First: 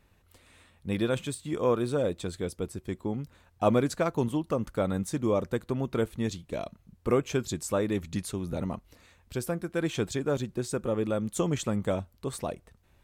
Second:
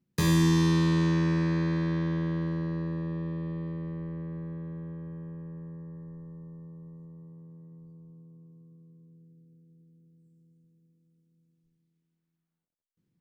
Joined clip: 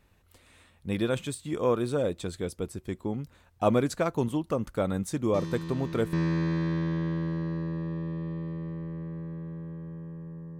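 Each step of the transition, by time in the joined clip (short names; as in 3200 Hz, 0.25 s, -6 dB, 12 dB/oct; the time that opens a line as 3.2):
first
5.34 add second from 0.53 s 0.79 s -13 dB
6.13 switch to second from 1.32 s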